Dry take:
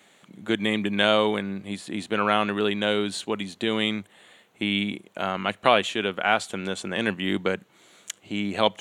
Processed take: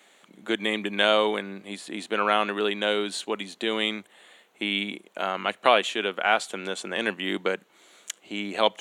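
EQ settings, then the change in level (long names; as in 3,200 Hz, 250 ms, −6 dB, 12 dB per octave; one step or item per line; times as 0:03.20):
high-pass filter 300 Hz 12 dB per octave
0.0 dB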